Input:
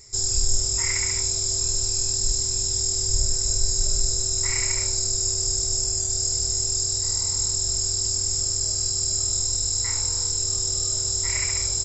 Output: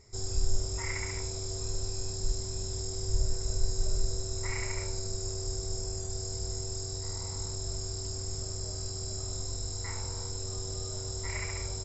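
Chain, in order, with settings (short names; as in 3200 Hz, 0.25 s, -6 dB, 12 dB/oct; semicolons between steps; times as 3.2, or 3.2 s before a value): LPF 1000 Hz 6 dB/oct; low shelf 140 Hz -3.5 dB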